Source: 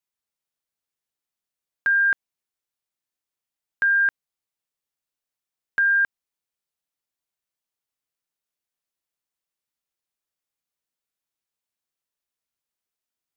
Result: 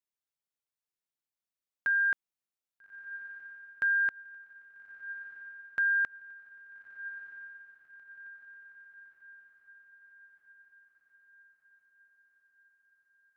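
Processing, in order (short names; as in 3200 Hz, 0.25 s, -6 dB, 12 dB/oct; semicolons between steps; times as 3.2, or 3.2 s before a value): diffused feedback echo 1.275 s, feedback 55%, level -14 dB; gain -8 dB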